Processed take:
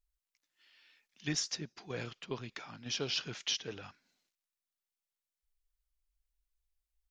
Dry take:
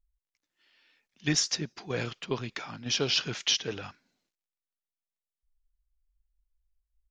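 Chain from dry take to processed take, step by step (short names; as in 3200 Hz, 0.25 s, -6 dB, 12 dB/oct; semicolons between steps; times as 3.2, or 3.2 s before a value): mismatched tape noise reduction encoder only; gain -8 dB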